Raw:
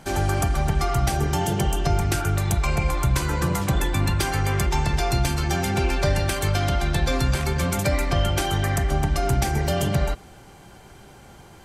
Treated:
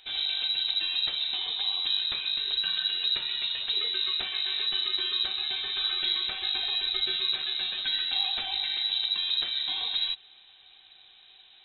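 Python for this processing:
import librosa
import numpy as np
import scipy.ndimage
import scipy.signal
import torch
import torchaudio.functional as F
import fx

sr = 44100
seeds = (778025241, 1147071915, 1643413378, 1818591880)

y = fx.freq_invert(x, sr, carrier_hz=3900)
y = F.gain(torch.from_numpy(y), -9.0).numpy()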